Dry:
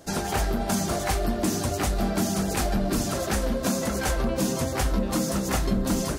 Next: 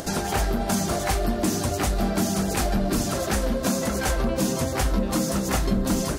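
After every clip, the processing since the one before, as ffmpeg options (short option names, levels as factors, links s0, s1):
-af "acompressor=mode=upward:threshold=0.0501:ratio=2.5,volume=1.19"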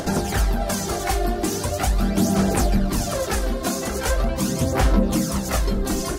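-af "aphaser=in_gain=1:out_gain=1:delay=2.8:decay=0.49:speed=0.41:type=sinusoidal"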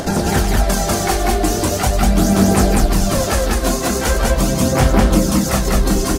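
-af "acontrast=36,aecho=1:1:29.15|195.3:0.316|0.891,volume=0.891"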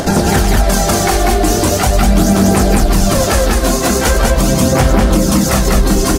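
-af "alimiter=level_in=2.11:limit=0.891:release=50:level=0:latency=1,volume=0.891"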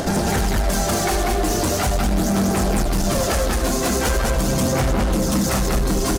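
-af "asoftclip=type=tanh:threshold=0.299,aecho=1:1:76:0.266,volume=0.596"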